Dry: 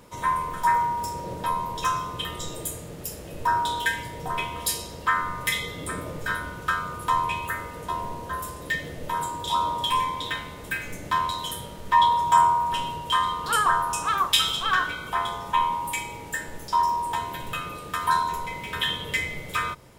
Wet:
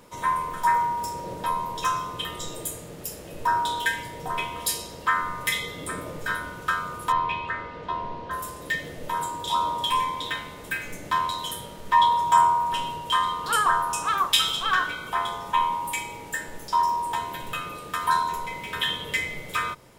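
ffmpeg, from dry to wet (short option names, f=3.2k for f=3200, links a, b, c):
-filter_complex "[0:a]asettb=1/sr,asplit=3[a][b][c];[a]atrim=end=7.124[d];[b]atrim=start=7.12:end=8.31,asetpts=PTS-STARTPTS,afade=t=in:d=0.004:c=qsin,afade=t=out:st=1.186:d=0.004:c=qsin,lowpass=f=4.4k:w=0.5412,lowpass=f=4.4k:w=1.3066[e];[c]atrim=start=8.306[f];[d][e]acrossfade=d=0.004:c1=hsin:c2=qsin[g];[g][f]acrossfade=d=0.004:c1=qsin:c2=hsin,equalizer=f=62:t=o:w=2.4:g=-6"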